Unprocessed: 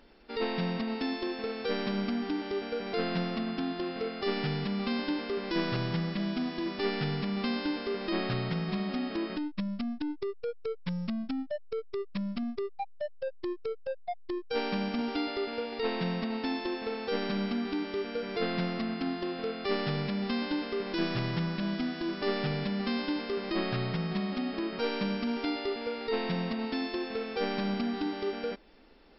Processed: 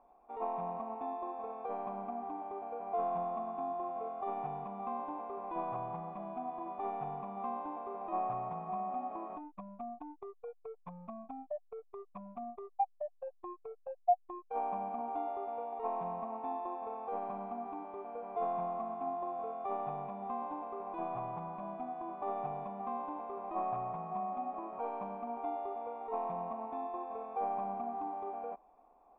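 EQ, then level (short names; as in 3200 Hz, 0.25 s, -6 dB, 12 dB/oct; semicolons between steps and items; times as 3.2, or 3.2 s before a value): vocal tract filter a; +10.5 dB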